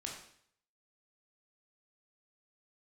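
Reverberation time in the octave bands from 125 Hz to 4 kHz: 0.70, 0.60, 0.60, 0.60, 0.60, 0.60 s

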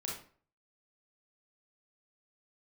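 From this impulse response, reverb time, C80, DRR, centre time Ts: 0.45 s, 9.0 dB, -3.5 dB, 41 ms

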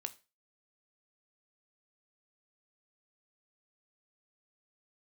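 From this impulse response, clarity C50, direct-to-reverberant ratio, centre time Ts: 19.0 dB, 9.5 dB, 4 ms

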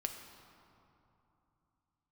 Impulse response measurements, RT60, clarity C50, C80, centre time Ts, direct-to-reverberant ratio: 2.9 s, 6.0 dB, 7.0 dB, 47 ms, 4.0 dB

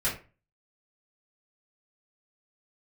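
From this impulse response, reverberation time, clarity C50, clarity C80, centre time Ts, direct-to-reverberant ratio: 0.35 s, 8.0 dB, 14.0 dB, 28 ms, -10.0 dB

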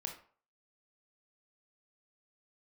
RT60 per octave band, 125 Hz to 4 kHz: 0.40, 0.35, 0.45, 0.45, 0.40, 0.30 s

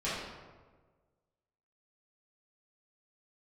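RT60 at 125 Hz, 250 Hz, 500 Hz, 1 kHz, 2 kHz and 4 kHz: 1.7, 1.5, 1.6, 1.3, 1.0, 0.75 s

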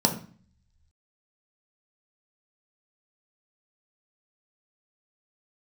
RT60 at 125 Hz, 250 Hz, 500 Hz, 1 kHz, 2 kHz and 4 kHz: 1.1, 0.70, 0.40, 0.45, 0.45, 0.40 s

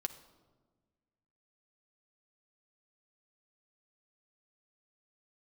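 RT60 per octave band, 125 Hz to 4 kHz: 2.0, 1.9, 1.6, 1.2, 0.90, 0.80 s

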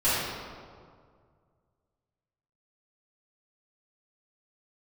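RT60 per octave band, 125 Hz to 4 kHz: 2.7, 2.1, 2.1, 1.9, 1.4, 1.1 s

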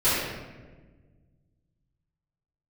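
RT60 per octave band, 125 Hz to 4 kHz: 2.7, 2.1, 1.6, 1.2, 1.1, 0.80 s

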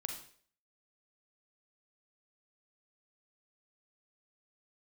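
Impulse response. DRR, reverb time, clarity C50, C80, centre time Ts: 3.5 dB, 0.50 s, 5.5 dB, 10.0 dB, 24 ms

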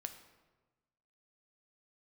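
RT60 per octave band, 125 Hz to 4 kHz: 1.5, 1.4, 1.3, 1.2, 1.0, 0.80 s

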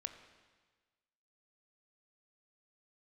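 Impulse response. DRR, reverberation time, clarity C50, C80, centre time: 7.5 dB, 1.4 s, 9.5 dB, 10.5 dB, 17 ms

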